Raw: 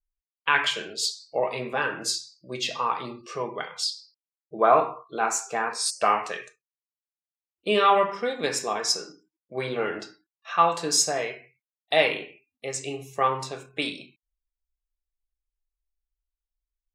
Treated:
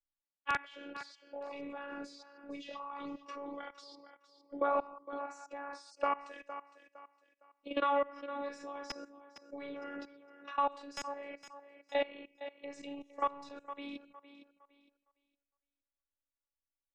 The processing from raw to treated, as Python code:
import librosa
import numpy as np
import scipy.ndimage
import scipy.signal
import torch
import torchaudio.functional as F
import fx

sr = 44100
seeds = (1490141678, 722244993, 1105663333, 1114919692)

p1 = fx.highpass(x, sr, hz=120.0, slope=6)
p2 = fx.level_steps(p1, sr, step_db=21)
p3 = fx.robotise(p2, sr, hz=283.0)
p4 = (np.mod(10.0 ** (10.5 / 20.0) * p3 + 1.0, 2.0) - 1.0) / 10.0 ** (10.5 / 20.0)
p5 = fx.spacing_loss(p4, sr, db_at_10k=25)
p6 = p5 + fx.echo_thinned(p5, sr, ms=460, feedback_pct=18, hz=160.0, wet_db=-17, dry=0)
y = fx.band_squash(p6, sr, depth_pct=40)